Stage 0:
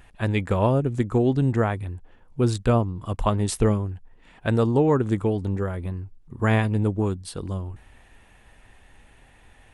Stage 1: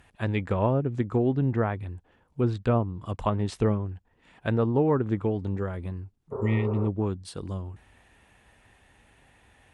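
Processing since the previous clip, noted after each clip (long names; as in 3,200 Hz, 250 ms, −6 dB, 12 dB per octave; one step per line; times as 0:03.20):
healed spectral selection 0:06.35–0:06.84, 370–1,800 Hz after
high-pass filter 58 Hz
treble cut that deepens with the level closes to 2,300 Hz, closed at −17.5 dBFS
level −3.5 dB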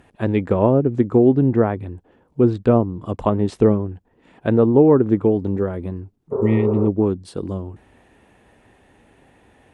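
parametric band 340 Hz +12 dB 2.6 octaves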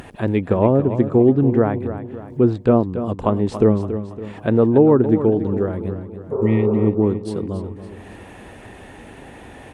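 upward compression, threshold −27 dBFS
on a send: repeating echo 281 ms, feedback 47%, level −11 dB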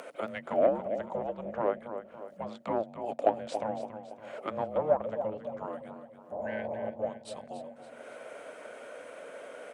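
soft clipping −5 dBFS, distortion −20 dB
frequency shifter −330 Hz
high-pass with resonance 570 Hz, resonance Q 4.9
level −6 dB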